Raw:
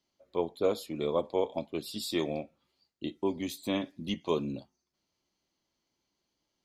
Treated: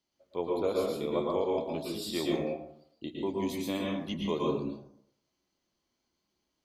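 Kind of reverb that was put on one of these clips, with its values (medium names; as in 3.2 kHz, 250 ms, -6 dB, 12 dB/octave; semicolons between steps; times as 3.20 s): plate-style reverb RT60 0.68 s, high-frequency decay 0.5×, pre-delay 100 ms, DRR -2.5 dB; trim -3.5 dB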